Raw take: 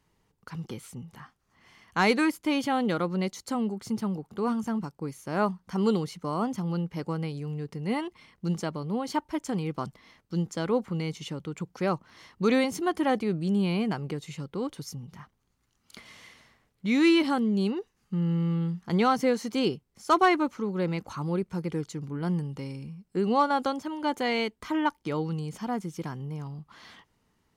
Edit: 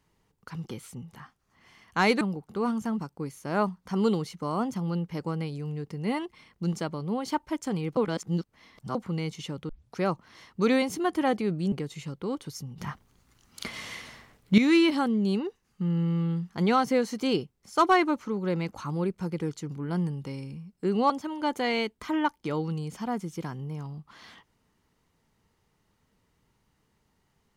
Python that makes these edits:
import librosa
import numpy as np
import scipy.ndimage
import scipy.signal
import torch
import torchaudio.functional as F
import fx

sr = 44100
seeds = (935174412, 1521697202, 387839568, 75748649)

y = fx.edit(x, sr, fx.cut(start_s=2.21, length_s=1.82),
    fx.reverse_span(start_s=9.79, length_s=0.98),
    fx.tape_start(start_s=11.51, length_s=0.27),
    fx.cut(start_s=13.54, length_s=0.5),
    fx.clip_gain(start_s=15.1, length_s=1.8, db=11.0),
    fx.cut(start_s=23.42, length_s=0.29), tone=tone)